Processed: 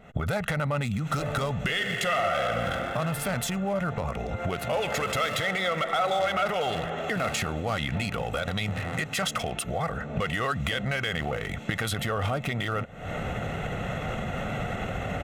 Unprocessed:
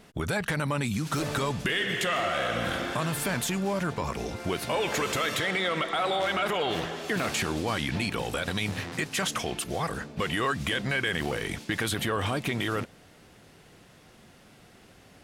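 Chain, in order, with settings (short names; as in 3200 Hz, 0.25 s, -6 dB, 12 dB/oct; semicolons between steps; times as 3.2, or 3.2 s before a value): Wiener smoothing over 9 samples; recorder AGC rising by 80 dB/s; comb 1.5 ms, depth 58%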